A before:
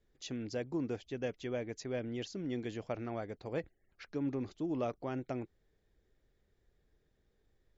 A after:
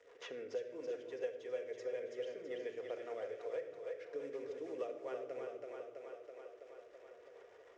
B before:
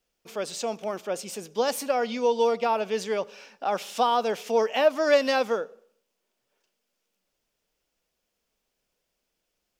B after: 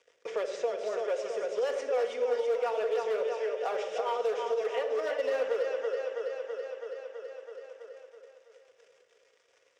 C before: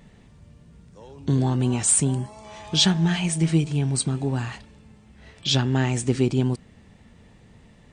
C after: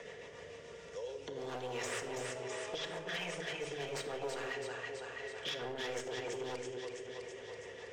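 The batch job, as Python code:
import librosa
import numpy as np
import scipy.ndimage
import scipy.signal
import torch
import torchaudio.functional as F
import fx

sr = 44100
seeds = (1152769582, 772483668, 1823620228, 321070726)

y = fx.cvsd(x, sr, bps=64000)
y = fx.over_compress(y, sr, threshold_db=-24.0, ratio=-0.5)
y = fx.rotary(y, sr, hz=7.0)
y = fx.cabinet(y, sr, low_hz=110.0, low_slope=12, high_hz=6300.0, hz=(180.0, 390.0, 770.0, 1900.0, 4300.0), db=(-3, 5, -5, 5, -9))
y = fx.echo_split(y, sr, split_hz=340.0, low_ms=156, high_ms=328, feedback_pct=52, wet_db=-6)
y = np.clip(10.0 ** (23.5 / 20.0) * y, -1.0, 1.0) / 10.0 ** (23.5 / 20.0)
y = fx.low_shelf_res(y, sr, hz=340.0, db=-13.5, q=3.0)
y = fx.room_shoebox(y, sr, seeds[0], volume_m3=2300.0, walls='furnished', distance_m=1.8)
y = fx.band_squash(y, sr, depth_pct=70)
y = y * 10.0 ** (-8.0 / 20.0)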